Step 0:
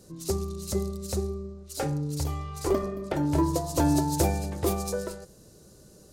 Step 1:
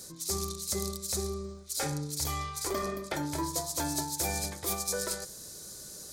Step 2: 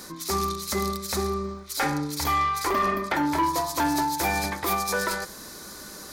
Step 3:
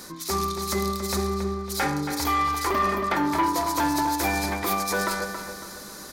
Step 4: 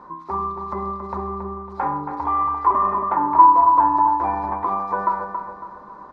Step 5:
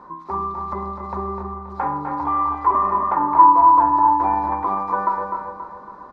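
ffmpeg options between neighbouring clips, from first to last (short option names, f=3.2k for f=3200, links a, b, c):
-af "tiltshelf=f=1.1k:g=-9,bandreject=f=2.8k:w=6,areverse,acompressor=threshold=-36dB:ratio=6,areverse,volume=6dB"
-filter_complex "[0:a]equalizer=f=125:t=o:w=1:g=-8,equalizer=f=250:t=o:w=1:g=8,equalizer=f=500:t=o:w=1:g=-4,equalizer=f=1k:t=o:w=1:g=10,equalizer=f=2k:t=o:w=1:g=7,equalizer=f=8k:t=o:w=1:g=-9,asplit=2[a][b];[b]alimiter=limit=-20.5dB:level=0:latency=1:release=160,volume=2dB[c];[a][c]amix=inputs=2:normalize=0,asoftclip=type=tanh:threshold=-16dB"
-filter_complex "[0:a]asplit=2[a][b];[b]adelay=276,lowpass=f=3.8k:p=1,volume=-7.5dB,asplit=2[c][d];[d]adelay=276,lowpass=f=3.8k:p=1,volume=0.43,asplit=2[e][f];[f]adelay=276,lowpass=f=3.8k:p=1,volume=0.43,asplit=2[g][h];[h]adelay=276,lowpass=f=3.8k:p=1,volume=0.43,asplit=2[i][j];[j]adelay=276,lowpass=f=3.8k:p=1,volume=0.43[k];[a][c][e][g][i][k]amix=inputs=6:normalize=0"
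-af "lowpass=f=1k:t=q:w=9.3,volume=-4.5dB"
-af "aecho=1:1:252:0.447"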